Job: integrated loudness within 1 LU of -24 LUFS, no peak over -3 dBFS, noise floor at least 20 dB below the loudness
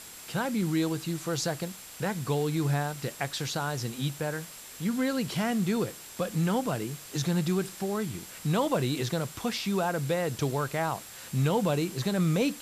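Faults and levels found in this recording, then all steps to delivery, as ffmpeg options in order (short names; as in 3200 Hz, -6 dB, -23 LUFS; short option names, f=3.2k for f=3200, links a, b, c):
steady tone 7600 Hz; tone level -51 dBFS; noise floor -46 dBFS; noise floor target -50 dBFS; loudness -30.0 LUFS; peak -15.5 dBFS; loudness target -24.0 LUFS
-> -af "bandreject=f=7.6k:w=30"
-af "afftdn=nr=6:nf=-46"
-af "volume=6dB"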